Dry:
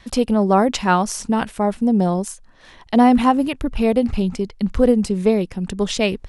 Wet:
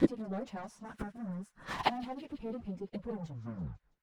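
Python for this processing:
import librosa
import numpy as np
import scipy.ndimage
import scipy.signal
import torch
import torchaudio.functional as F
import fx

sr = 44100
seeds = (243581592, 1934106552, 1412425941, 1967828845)

y = fx.tape_stop_end(x, sr, length_s=1.56)
y = fx.highpass(y, sr, hz=51.0, slope=6)
y = fx.peak_eq(y, sr, hz=170.0, db=9.5, octaves=0.53)
y = fx.leveller(y, sr, passes=3)
y = fx.gate_flip(y, sr, shuts_db=-14.0, range_db=-40)
y = fx.stretch_vocoder_free(y, sr, factor=0.64)
y = fx.high_shelf(y, sr, hz=3200.0, db=-9.5)
y = fx.echo_wet_highpass(y, sr, ms=165, feedback_pct=56, hz=3100.0, wet_db=-14.5)
y = fx.bell_lfo(y, sr, hz=0.39, low_hz=330.0, high_hz=1700.0, db=8)
y = y * 10.0 ** (9.5 / 20.0)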